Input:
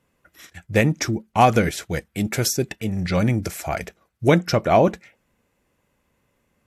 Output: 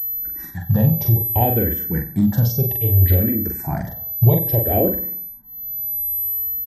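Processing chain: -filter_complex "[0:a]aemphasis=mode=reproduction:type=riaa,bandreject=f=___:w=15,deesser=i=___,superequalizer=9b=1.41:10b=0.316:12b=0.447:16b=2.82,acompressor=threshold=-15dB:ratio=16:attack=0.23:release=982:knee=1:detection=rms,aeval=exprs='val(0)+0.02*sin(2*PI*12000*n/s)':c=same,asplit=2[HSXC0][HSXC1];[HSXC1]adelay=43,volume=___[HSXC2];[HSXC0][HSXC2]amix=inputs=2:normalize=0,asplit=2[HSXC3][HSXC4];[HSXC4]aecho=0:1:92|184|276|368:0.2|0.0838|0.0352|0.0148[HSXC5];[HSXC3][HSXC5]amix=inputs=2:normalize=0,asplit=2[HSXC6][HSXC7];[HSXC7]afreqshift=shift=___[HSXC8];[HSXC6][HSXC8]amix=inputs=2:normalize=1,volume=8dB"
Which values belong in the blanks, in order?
2100, 0.35, -3.5dB, -0.62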